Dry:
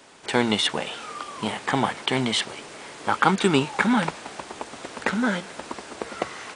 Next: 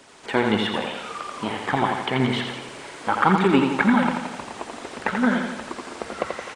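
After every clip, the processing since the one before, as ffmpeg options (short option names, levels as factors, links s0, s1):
-filter_complex "[0:a]acrossover=split=2900[s0][s1];[s1]acompressor=threshold=0.00562:ratio=4:attack=1:release=60[s2];[s0][s2]amix=inputs=2:normalize=0,aphaser=in_gain=1:out_gain=1:delay=4.5:decay=0.38:speed=1.8:type=triangular,aecho=1:1:85|170|255|340|425|510|595:0.562|0.304|0.164|0.0885|0.0478|0.0258|0.0139"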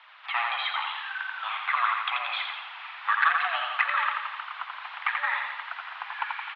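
-af "asoftclip=type=tanh:threshold=0.237,aeval=exprs='val(0)+0.0126*(sin(2*PI*60*n/s)+sin(2*PI*2*60*n/s)/2+sin(2*PI*3*60*n/s)/3+sin(2*PI*4*60*n/s)/4+sin(2*PI*5*60*n/s)/5)':c=same,highpass=f=570:t=q:w=0.5412,highpass=f=570:t=q:w=1.307,lowpass=f=3200:t=q:w=0.5176,lowpass=f=3200:t=q:w=0.7071,lowpass=f=3200:t=q:w=1.932,afreqshift=340"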